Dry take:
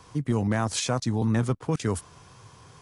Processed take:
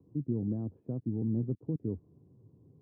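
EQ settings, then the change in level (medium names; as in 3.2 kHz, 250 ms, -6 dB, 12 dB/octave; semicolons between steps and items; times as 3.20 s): high-pass 97 Hz; dynamic bell 250 Hz, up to -4 dB, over -38 dBFS, Q 1.2; four-pole ladder low-pass 380 Hz, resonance 40%; +2.0 dB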